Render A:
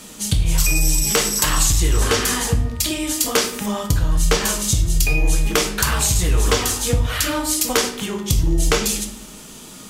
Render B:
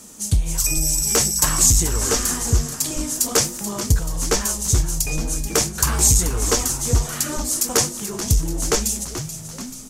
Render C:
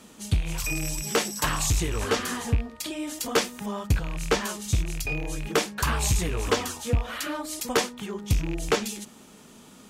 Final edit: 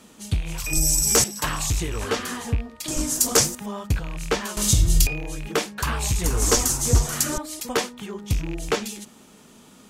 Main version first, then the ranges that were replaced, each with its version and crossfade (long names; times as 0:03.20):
C
0:00.73–0:01.24: punch in from B
0:02.88–0:03.55: punch in from B
0:04.57–0:05.07: punch in from A
0:06.24–0:07.38: punch in from B